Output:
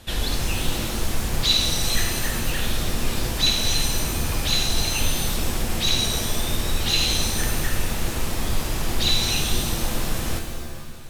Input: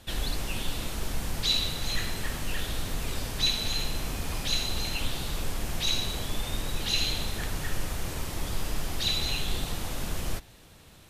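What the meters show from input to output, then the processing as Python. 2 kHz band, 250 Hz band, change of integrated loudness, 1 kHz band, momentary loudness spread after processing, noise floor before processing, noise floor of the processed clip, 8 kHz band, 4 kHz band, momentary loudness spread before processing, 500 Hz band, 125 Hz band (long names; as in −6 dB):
+7.0 dB, +8.5 dB, +7.5 dB, +7.5 dB, 8 LU, −52 dBFS, −30 dBFS, +10.5 dB, +7.0 dB, 8 LU, +8.0 dB, +7.5 dB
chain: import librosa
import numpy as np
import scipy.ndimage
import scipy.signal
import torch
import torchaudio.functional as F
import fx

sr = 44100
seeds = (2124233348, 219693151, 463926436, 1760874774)

y = fx.rev_shimmer(x, sr, seeds[0], rt60_s=1.3, semitones=7, shimmer_db=-2, drr_db=5.5)
y = y * 10.0 ** (5.5 / 20.0)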